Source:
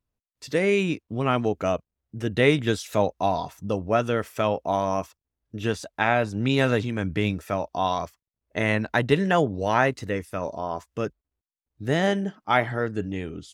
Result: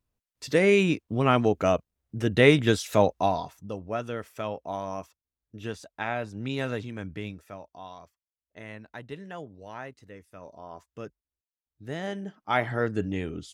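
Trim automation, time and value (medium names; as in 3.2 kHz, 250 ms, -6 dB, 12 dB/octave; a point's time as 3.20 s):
3.15 s +1.5 dB
3.67 s -9 dB
7.00 s -9 dB
7.86 s -19 dB
10.10 s -19 dB
10.86 s -11.5 dB
12.04 s -11.5 dB
12.84 s 0 dB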